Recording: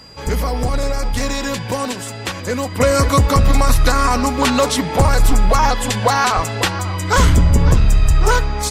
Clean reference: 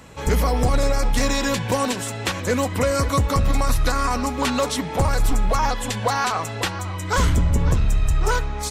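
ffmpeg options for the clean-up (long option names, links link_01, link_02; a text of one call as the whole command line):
ffmpeg -i in.wav -filter_complex "[0:a]bandreject=frequency=4800:width=30,asplit=3[link_01][link_02][link_03];[link_01]afade=type=out:start_time=1.12:duration=0.02[link_04];[link_02]highpass=frequency=140:width=0.5412,highpass=frequency=140:width=1.3066,afade=type=in:start_time=1.12:duration=0.02,afade=type=out:start_time=1.24:duration=0.02[link_05];[link_03]afade=type=in:start_time=1.24:duration=0.02[link_06];[link_04][link_05][link_06]amix=inputs=3:normalize=0,asplit=3[link_07][link_08][link_09];[link_07]afade=type=out:start_time=6.35:duration=0.02[link_10];[link_08]highpass=frequency=140:width=0.5412,highpass=frequency=140:width=1.3066,afade=type=in:start_time=6.35:duration=0.02,afade=type=out:start_time=6.47:duration=0.02[link_11];[link_09]afade=type=in:start_time=6.47:duration=0.02[link_12];[link_10][link_11][link_12]amix=inputs=3:normalize=0,asplit=3[link_13][link_14][link_15];[link_13]afade=type=out:start_time=7.73:duration=0.02[link_16];[link_14]highpass=frequency=140:width=0.5412,highpass=frequency=140:width=1.3066,afade=type=in:start_time=7.73:duration=0.02,afade=type=out:start_time=7.85:duration=0.02[link_17];[link_15]afade=type=in:start_time=7.85:duration=0.02[link_18];[link_16][link_17][link_18]amix=inputs=3:normalize=0,asetnsamples=nb_out_samples=441:pad=0,asendcmd='2.8 volume volume -6.5dB',volume=0dB" out.wav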